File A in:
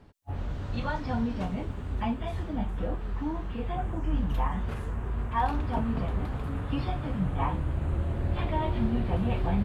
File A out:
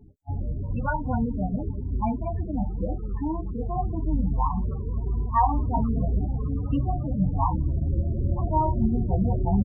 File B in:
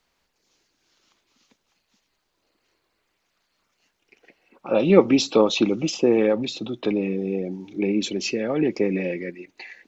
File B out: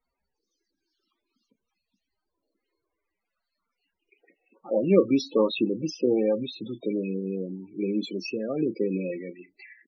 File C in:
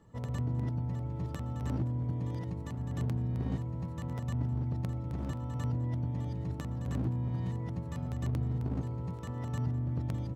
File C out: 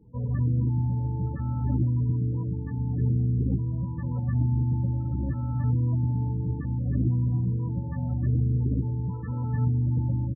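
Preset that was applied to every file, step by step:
ambience of single reflections 15 ms −15.5 dB, 32 ms −13 dB
dynamic equaliser 1,100 Hz, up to +3 dB, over −39 dBFS, Q 2.1
spectral peaks only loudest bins 16
loudness normalisation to −27 LKFS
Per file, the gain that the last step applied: +4.5, −5.0, +6.5 decibels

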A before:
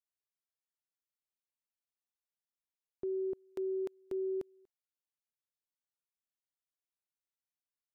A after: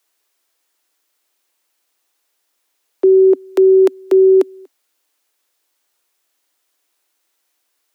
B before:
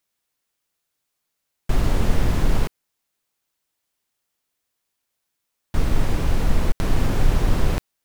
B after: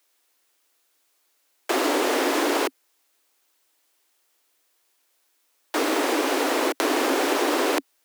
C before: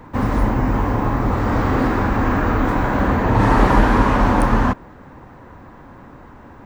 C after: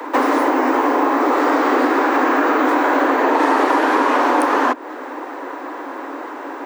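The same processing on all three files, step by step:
Butterworth high-pass 270 Hz 96 dB per octave
downward compressor 6 to 1, threshold −28 dBFS
normalise the peak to −3 dBFS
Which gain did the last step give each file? +26.0, +10.0, +15.0 decibels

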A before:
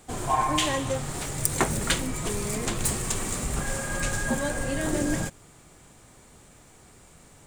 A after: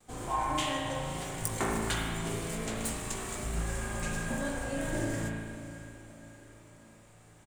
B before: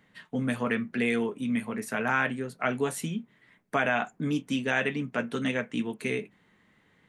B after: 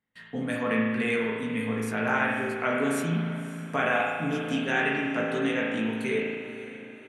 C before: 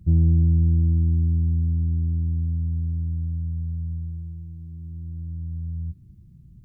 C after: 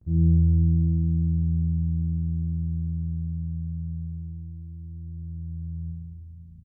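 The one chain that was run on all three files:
noise gate with hold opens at −46 dBFS
double-tracking delay 18 ms −7.5 dB
feedback delay with all-pass diffusion 558 ms, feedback 49%, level −14 dB
spring reverb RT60 1.6 s, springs 36 ms, chirp 70 ms, DRR −2 dB
normalise the peak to −12 dBFS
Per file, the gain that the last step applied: −10.0, −2.0, −9.5 decibels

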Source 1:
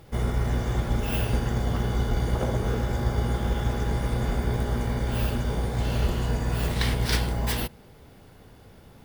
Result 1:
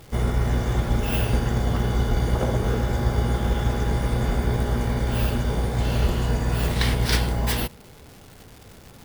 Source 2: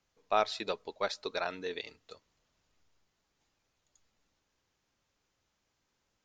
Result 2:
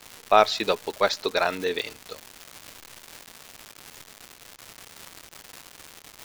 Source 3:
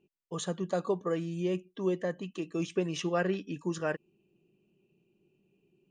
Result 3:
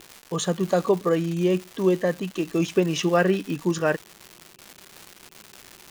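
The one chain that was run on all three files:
surface crackle 400 per second −40 dBFS
loudness normalisation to −24 LKFS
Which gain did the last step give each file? +3.0, +11.0, +9.5 decibels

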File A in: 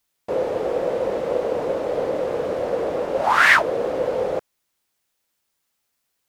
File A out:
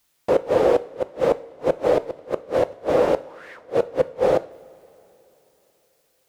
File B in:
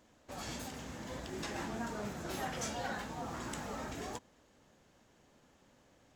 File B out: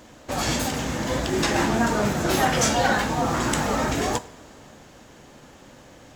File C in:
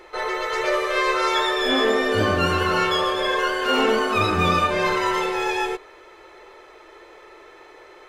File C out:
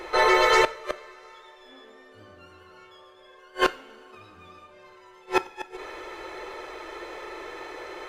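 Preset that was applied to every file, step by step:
gate with flip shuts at −14 dBFS, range −37 dB
coupled-rooms reverb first 0.42 s, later 3.6 s, from −18 dB, DRR 12.5 dB
normalise the peak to −6 dBFS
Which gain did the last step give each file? +7.0, +18.0, +7.0 decibels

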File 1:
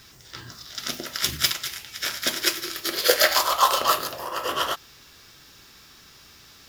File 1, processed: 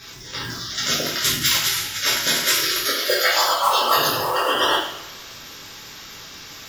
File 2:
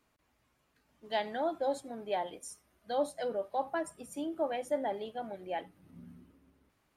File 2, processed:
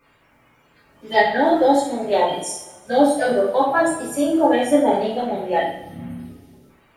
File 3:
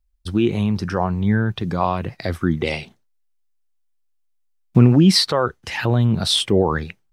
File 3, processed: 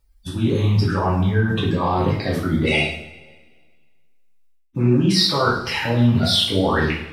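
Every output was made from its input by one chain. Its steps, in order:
spectral magnitudes quantised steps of 30 dB
reversed playback
downward compressor 12 to 1, threshold −26 dBFS
reversed playback
coupled-rooms reverb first 0.57 s, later 1.7 s, from −17 dB, DRR −6.5 dB
loudness normalisation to −19 LKFS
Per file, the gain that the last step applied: +4.5, +11.0, +4.5 decibels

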